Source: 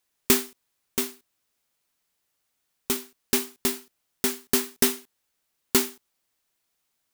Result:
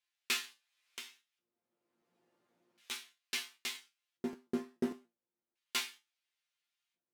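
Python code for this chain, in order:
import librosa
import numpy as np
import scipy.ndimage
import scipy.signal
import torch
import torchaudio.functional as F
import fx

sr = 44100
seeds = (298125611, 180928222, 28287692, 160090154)

y = fx.filter_lfo_bandpass(x, sr, shape='square', hz=0.36, low_hz=310.0, high_hz=2800.0, q=1.2)
y = fx.resonator_bank(y, sr, root=46, chord='fifth', decay_s=0.22)
y = fx.buffer_crackle(y, sr, first_s=0.84, period_s=0.58, block=512, kind='repeat')
y = fx.band_squash(y, sr, depth_pct=70, at=(0.44, 2.91))
y = y * 10.0 ** (7.0 / 20.0)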